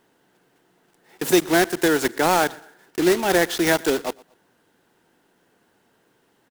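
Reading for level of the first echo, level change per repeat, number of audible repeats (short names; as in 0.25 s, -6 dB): -23.5 dB, -10.0 dB, 2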